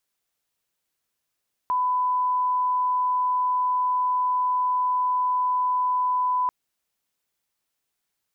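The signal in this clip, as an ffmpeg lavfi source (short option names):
-f lavfi -i "sine=f=1000:d=4.79:r=44100,volume=-1.94dB"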